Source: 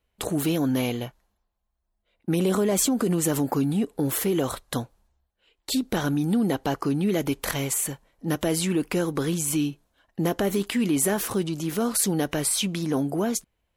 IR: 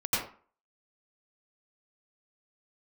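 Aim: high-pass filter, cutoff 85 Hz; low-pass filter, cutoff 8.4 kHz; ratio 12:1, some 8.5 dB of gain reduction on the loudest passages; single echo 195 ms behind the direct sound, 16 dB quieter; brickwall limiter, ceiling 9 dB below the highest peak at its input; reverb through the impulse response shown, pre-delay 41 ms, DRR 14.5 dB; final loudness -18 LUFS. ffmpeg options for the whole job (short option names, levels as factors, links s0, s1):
-filter_complex "[0:a]highpass=85,lowpass=8400,acompressor=threshold=0.0398:ratio=12,alimiter=limit=0.0631:level=0:latency=1,aecho=1:1:195:0.158,asplit=2[s0][s1];[1:a]atrim=start_sample=2205,adelay=41[s2];[s1][s2]afir=irnorm=-1:irlink=0,volume=0.0631[s3];[s0][s3]amix=inputs=2:normalize=0,volume=6.31"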